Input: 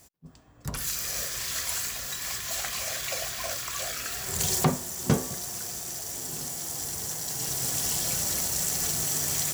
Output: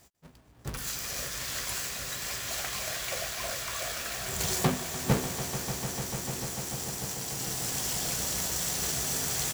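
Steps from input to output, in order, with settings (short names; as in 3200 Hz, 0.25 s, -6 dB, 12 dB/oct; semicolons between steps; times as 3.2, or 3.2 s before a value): half-waves squared off; doubler 16 ms -12.5 dB; swelling echo 0.148 s, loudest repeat 5, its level -13 dB; gain -7.5 dB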